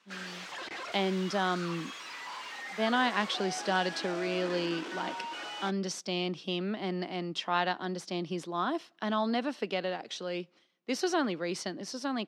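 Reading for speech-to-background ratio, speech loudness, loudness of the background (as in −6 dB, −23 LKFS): 7.0 dB, −33.0 LKFS, −40.0 LKFS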